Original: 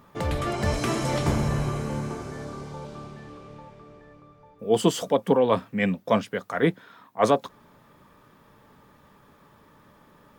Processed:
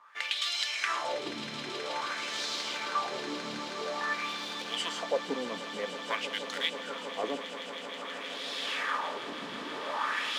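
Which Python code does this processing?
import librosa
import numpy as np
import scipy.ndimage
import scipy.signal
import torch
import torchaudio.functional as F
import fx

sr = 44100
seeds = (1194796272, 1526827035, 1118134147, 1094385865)

y = fx.recorder_agc(x, sr, target_db=-14.0, rise_db_per_s=22.0, max_gain_db=30)
y = fx.weighting(y, sr, curve='ITU-R 468')
y = fx.quant_companded(y, sr, bits=4)
y = fx.wah_lfo(y, sr, hz=0.5, low_hz=240.0, high_hz=3800.0, q=2.8)
y = fx.echo_swell(y, sr, ms=160, loudest=8, wet_db=-15.0)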